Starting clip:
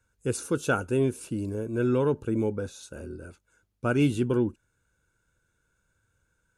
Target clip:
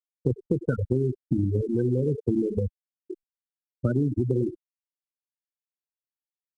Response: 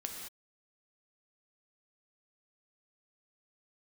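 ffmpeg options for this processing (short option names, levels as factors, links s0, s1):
-filter_complex "[0:a]acrossover=split=130|420|1400[s0][s1][s2][s3];[s0]acompressor=threshold=0.00794:ratio=4[s4];[s1]acompressor=threshold=0.0282:ratio=4[s5];[s2]acompressor=threshold=0.0158:ratio=4[s6];[s3]acompressor=threshold=0.00891:ratio=4[s7];[s4][s5][s6][s7]amix=inputs=4:normalize=0,highpass=f=68:w=0.5412,highpass=f=68:w=1.3066,asplit=2[s8][s9];[s9]adelay=39,volume=0.282[s10];[s8][s10]amix=inputs=2:normalize=0,asplit=2[s11][s12];[s12]adelay=100,highpass=300,lowpass=3400,asoftclip=type=hard:threshold=0.0631,volume=0.398[s13];[s11][s13]amix=inputs=2:normalize=0,afftfilt=real='re*gte(hypot(re,im),0.126)':imag='im*gte(hypot(re,im),0.126)':win_size=1024:overlap=0.75,aemphasis=mode=reproduction:type=bsi,acompressor=threshold=0.0398:ratio=4,adynamicequalizer=threshold=0.00398:dfrequency=220:dqfactor=4.6:tfrequency=220:tqfactor=4.6:attack=5:release=100:ratio=0.375:range=3:mode=cutabove:tftype=bell,volume=2.37" -ar 22050 -c:a adpcm_ima_wav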